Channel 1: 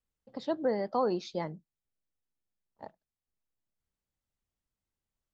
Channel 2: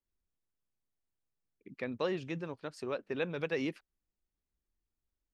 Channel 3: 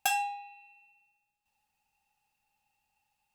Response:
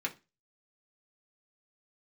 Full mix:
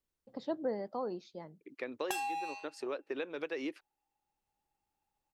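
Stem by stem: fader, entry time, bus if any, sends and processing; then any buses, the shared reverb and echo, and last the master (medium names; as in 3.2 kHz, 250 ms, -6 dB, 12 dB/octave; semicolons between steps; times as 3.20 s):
-3.0 dB, 0.00 s, no bus, no send, auto duck -15 dB, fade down 1.70 s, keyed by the second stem
+0.5 dB, 0.00 s, bus A, no send, resonant low shelf 240 Hz -7 dB, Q 3
+2.0 dB, 2.05 s, bus A, no send, waveshaping leveller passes 3; compression, threshold -24 dBFS, peak gain reduction 6 dB; level-controlled noise filter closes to 1.1 kHz, open at -28.5 dBFS
bus A: 0.0 dB, bass shelf 490 Hz -10.5 dB; compression 5:1, threshold -37 dBFS, peak gain reduction 13.5 dB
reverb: none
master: peaking EQ 360 Hz +4 dB 2.8 oct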